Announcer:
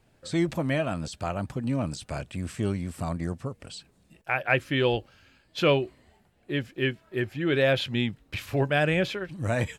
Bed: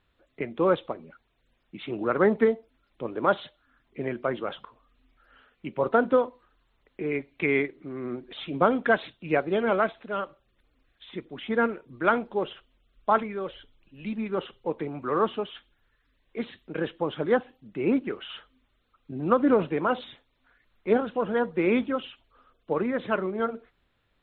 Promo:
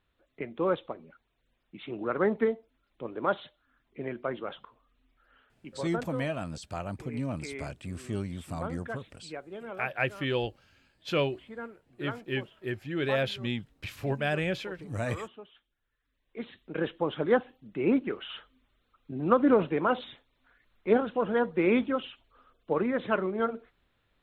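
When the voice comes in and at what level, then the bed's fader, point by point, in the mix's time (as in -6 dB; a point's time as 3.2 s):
5.50 s, -5.5 dB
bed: 5.29 s -5 dB
6.21 s -16.5 dB
15.59 s -16.5 dB
16.82 s -1 dB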